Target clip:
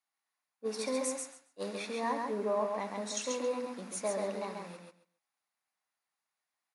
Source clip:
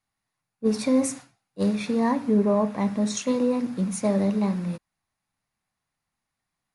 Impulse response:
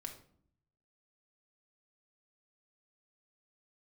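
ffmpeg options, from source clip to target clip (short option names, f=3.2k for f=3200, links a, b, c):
-filter_complex "[0:a]highpass=500,asplit=2[a][b];[b]aecho=0:1:136|272|408:0.631|0.107|0.0182[c];[a][c]amix=inputs=2:normalize=0,volume=-6dB"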